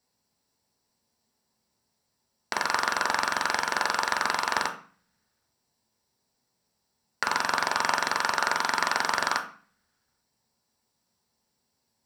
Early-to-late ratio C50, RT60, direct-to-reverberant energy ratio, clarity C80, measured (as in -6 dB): 10.5 dB, 0.40 s, 2.0 dB, 14.0 dB